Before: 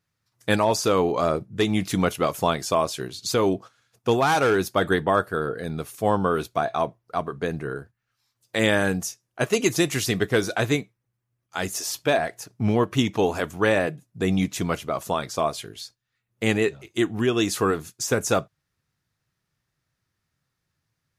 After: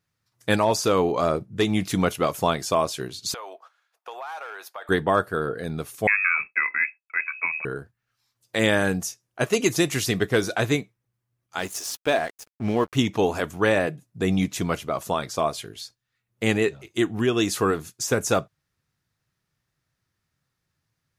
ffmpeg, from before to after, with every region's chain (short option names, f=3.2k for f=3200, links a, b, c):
-filter_complex "[0:a]asettb=1/sr,asplit=3[a][b][c];[a]atrim=end=3.344[d];[b]atrim=start=3.34:end=4.89,asetpts=PTS-STARTPTS,afade=t=in:d=0.004:c=qsin,afade=t=out:st=1.546:d=0.004:c=qsin,highpass=f=680:w=0.5412,highpass=f=680:w=1.3066,equalizer=f=7.5k:t=o:w=2.4:g=-11.5,acompressor=threshold=-34dB:ratio=4:attack=3.2:release=140:knee=1:detection=peak[e];[c]atrim=start=4.886[f];[d][e]acrossfade=d=0.004:c1=hsin:c2=qsin[g];[g][f]acrossfade=d=0.004:c1=qsin:c2=hsin,asettb=1/sr,asplit=3[h][i][j];[h]atrim=end=6.074[k];[i]atrim=start=6.07:end=7.65,asetpts=PTS-STARTPTS,afade=t=in:d=0.004:c=qsin,afade=t=out:st=1.576:d=0.004:c=qsin,lowpass=f=2.3k:t=q:w=0.5098,lowpass=f=2.3k:t=q:w=0.6013,lowpass=f=2.3k:t=q:w=0.9,lowpass=f=2.3k:t=q:w=2.563,afreqshift=-2700,agate=range=-33dB:threshold=-51dB:ratio=3:release=100:detection=peak[l];[j]atrim=start=7.646[m];[k][l]acrossfade=d=0.004:c1=hsin:c2=qsin[n];[n][m]acrossfade=d=0.004:c1=qsin:c2=hsin,asettb=1/sr,asplit=3[o][p][q];[o]atrim=end=11.594[r];[p]atrim=start=11.59:end=12.95,asetpts=PTS-STARTPTS,afade=t=in:d=0.004:c=qsin,afade=t=out:st=1.356:d=0.004:c=qsin,equalizer=f=120:w=1.3:g=-6,aeval=exprs='sgn(val(0))*max(abs(val(0))-0.01,0)':c=same[s];[q]atrim=start=12.946[t];[r][s]acrossfade=d=0.004:c1=hsin:c2=qsin[u];[u][t]acrossfade=d=0.004:c1=qsin:c2=hsin"